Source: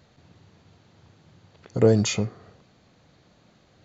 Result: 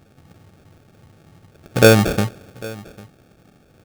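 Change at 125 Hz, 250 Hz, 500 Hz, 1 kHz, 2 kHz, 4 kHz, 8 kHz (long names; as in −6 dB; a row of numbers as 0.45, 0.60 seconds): +6.0 dB, +6.0 dB, +7.0 dB, +14.5 dB, +16.5 dB, +8.5 dB, can't be measured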